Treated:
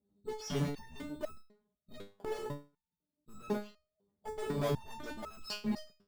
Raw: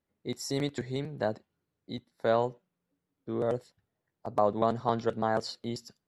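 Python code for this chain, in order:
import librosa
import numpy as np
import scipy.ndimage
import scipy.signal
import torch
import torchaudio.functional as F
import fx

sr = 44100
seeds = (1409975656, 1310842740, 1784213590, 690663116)

p1 = fx.pitch_trill(x, sr, semitones=-8.5, every_ms=68)
p2 = scipy.signal.sosfilt(scipy.signal.butter(4, 44.0, 'highpass', fs=sr, output='sos'), p1)
p3 = p2 + 0.68 * np.pad(p2, (int(4.8 * sr / 1000.0), 0))[:len(p2)]
p4 = fx.env_lowpass(p3, sr, base_hz=450.0, full_db=-28.0)
p5 = fx.tube_stage(p4, sr, drive_db=37.0, bias=0.45)
p6 = fx.sample_hold(p5, sr, seeds[0], rate_hz=4000.0, jitter_pct=0)
p7 = p5 + F.gain(torch.from_numpy(p6), -4.5).numpy()
p8 = fx.resonator_held(p7, sr, hz=4.0, low_hz=100.0, high_hz=1300.0)
y = F.gain(torch.from_numpy(p8), 14.0).numpy()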